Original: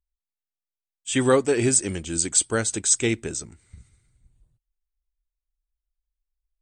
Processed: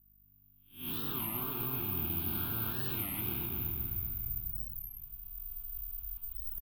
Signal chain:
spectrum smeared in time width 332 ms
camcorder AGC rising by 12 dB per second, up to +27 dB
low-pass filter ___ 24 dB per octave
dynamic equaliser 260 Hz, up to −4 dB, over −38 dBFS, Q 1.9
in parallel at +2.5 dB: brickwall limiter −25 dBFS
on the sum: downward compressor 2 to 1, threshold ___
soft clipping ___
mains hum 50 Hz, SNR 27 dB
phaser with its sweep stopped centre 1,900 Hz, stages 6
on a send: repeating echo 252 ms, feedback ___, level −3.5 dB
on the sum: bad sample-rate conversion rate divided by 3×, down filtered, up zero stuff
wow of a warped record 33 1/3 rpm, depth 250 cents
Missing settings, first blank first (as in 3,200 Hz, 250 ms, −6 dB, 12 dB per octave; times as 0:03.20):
3,200 Hz, −32 dBFS, −36 dBFS, 39%